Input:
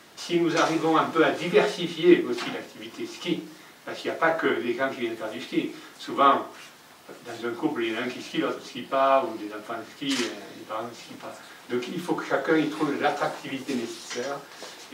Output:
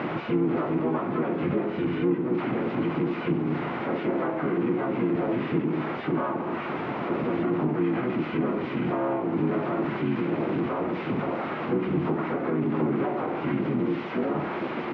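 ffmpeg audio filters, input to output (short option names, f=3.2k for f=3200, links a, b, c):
-filter_complex "[0:a]aeval=exprs='val(0)+0.5*0.0841*sgn(val(0))':c=same,acompressor=threshold=-26dB:ratio=4,asoftclip=type=tanh:threshold=-23.5dB,asplit=4[a][b][c][d];[b]asetrate=22050,aresample=44100,atempo=2,volume=-3dB[e];[c]asetrate=35002,aresample=44100,atempo=1.25992,volume=-2dB[f];[d]asetrate=58866,aresample=44100,atempo=0.749154,volume=-6dB[g];[a][e][f][g]amix=inputs=4:normalize=0,highpass=110,equalizer=f=150:t=q:w=4:g=6,equalizer=f=230:t=q:w=4:g=5,equalizer=f=350:t=q:w=4:g=7,equalizer=f=1.7k:t=q:w=4:g=-7,lowpass=f=2.1k:w=0.5412,lowpass=f=2.1k:w=1.3066,volume=-3.5dB"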